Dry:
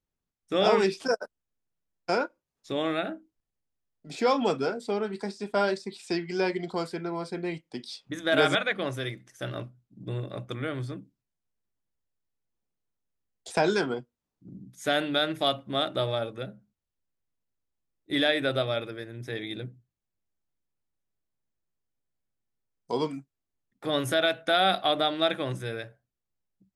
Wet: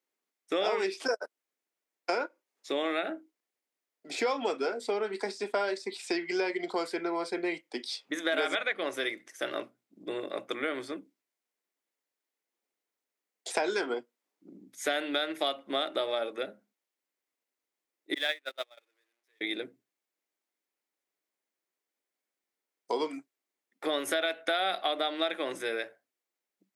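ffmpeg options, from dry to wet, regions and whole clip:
ffmpeg -i in.wav -filter_complex "[0:a]asettb=1/sr,asplit=3[link_01][link_02][link_03];[link_01]atrim=end=18.144[link_04];[link_02]atrim=start=18.14:end=19.41,asetpts=PTS-STARTPTS,afade=type=in:duration=0.004:curve=qsin,afade=type=out:start_time=1.266:duration=0.004:curve=qsin,aeval=exprs='val(0)+0.5*0.0178*sgn(val(0))':channel_layout=same,agate=range=-40dB:threshold=-23dB:ratio=16:release=100:detection=peak,highpass=frequency=1200:poles=1[link_05];[link_03]atrim=start=19.406[link_06];[link_04][link_05]acrossfade=duration=0.004:curve1=hsin:curve2=qsin[link_07];[link_07][link_06]acrossfade=duration=0.004:curve1=qsin:curve2=hsin,highpass=frequency=300:width=0.5412,highpass=frequency=300:width=1.3066,equalizer=frequency=2100:width=3.6:gain=5.5,acompressor=threshold=-31dB:ratio=4,volume=3.5dB" out.wav

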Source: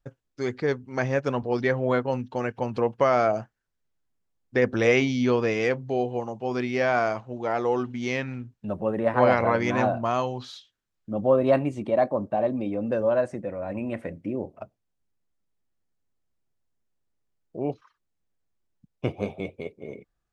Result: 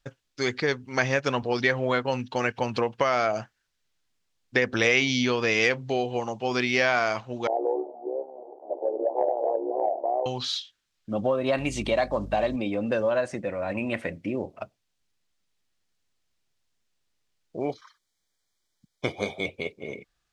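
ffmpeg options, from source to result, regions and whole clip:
ffmpeg -i in.wav -filter_complex "[0:a]asettb=1/sr,asplit=3[link_01][link_02][link_03];[link_01]atrim=end=7.474[link_04];[link_02]atrim=start=7.47:end=10.26,asetpts=PTS-STARTPTS,afade=type=in:duration=0.004:curve=qsin,afade=type=out:start_time=2.786:duration=0.004:curve=qsin,aeval=exprs='val(0)+0.5*0.0422*sgn(val(0))':channel_layout=same,asuperpass=centerf=530:order=12:qfactor=1.1,tremolo=f=70:d=0.621[link_05];[link_03]atrim=start=10.256[link_06];[link_04][link_05]acrossfade=duration=0.004:curve1=hsin:curve2=qsin[link_07];[link_07][link_06]acrossfade=duration=0.004:curve1=qsin:curve2=hsin,asettb=1/sr,asplit=3[link_08][link_09][link_10];[link_08]atrim=end=11.584[link_11];[link_09]atrim=start=11.58:end=12.56,asetpts=PTS-STARTPTS,afade=type=in:duration=0.004:curve=qsin,afade=type=out:start_time=0.976:duration=0.004:curve=qsin,highshelf=frequency=2300:gain=9,aeval=exprs='val(0)+0.0141*(sin(2*PI*50*n/s)+sin(2*PI*2*50*n/s)/2+sin(2*PI*3*50*n/s)/3+sin(2*PI*4*50*n/s)/4+sin(2*PI*5*50*n/s)/5)':channel_layout=same[link_12];[link_10]atrim=start=12.556[link_13];[link_11][link_12]acrossfade=duration=0.004:curve1=hsin:curve2=qsin[link_14];[link_14][link_13]acrossfade=duration=0.004:curve1=qsin:curve2=hsin,asettb=1/sr,asplit=3[link_15][link_16][link_17];[link_15]atrim=end=17.604[link_18];[link_16]atrim=start=17.6:end=19.46,asetpts=PTS-STARTPTS,afade=type=in:duration=0.004:curve=qsin,afade=type=out:start_time=1.856:duration=0.004:curve=qsin,asuperstop=centerf=2700:order=8:qfactor=5,bass=frequency=250:gain=-5,treble=frequency=4000:gain=4[link_19];[link_17]atrim=start=19.456[link_20];[link_18][link_19]acrossfade=duration=0.004:curve1=hsin:curve2=qsin[link_21];[link_21][link_20]acrossfade=duration=0.004:curve1=qsin:curve2=hsin,acompressor=threshold=-23dB:ratio=6,equalizer=frequency=4000:width=0.38:gain=13.5" out.wav

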